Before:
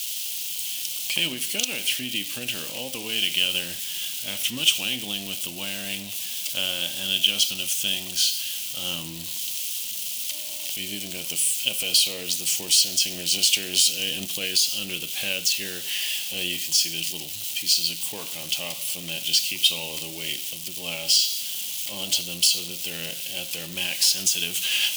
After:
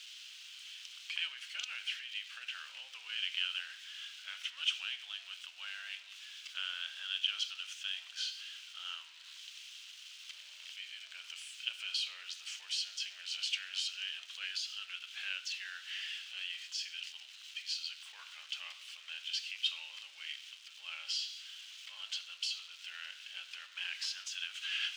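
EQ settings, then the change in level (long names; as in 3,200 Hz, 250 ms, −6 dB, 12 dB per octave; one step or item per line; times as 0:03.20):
four-pole ladder high-pass 1,300 Hz, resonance 65%
high-frequency loss of the air 150 metres
−1.0 dB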